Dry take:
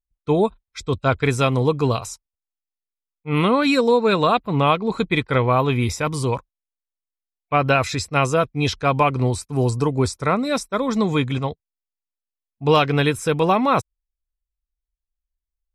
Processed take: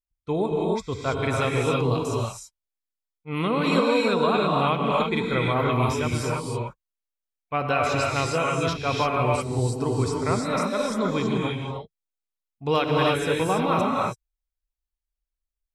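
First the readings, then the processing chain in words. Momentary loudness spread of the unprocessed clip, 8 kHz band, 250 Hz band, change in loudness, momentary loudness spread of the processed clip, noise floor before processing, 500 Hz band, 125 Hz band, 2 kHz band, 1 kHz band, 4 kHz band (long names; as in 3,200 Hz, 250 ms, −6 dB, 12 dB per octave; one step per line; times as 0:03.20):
8 LU, −3.5 dB, −4.0 dB, −4.0 dB, 9 LU, below −85 dBFS, −3.5 dB, −4.5 dB, −3.5 dB, −3.5 dB, −3.0 dB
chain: reverb whose tail is shaped and stops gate 350 ms rising, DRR −2 dB
level −7.5 dB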